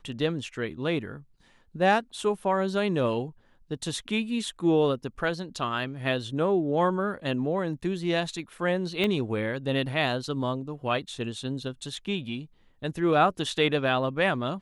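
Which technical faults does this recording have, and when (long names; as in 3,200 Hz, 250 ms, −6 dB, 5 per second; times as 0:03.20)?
0:09.04: click −15 dBFS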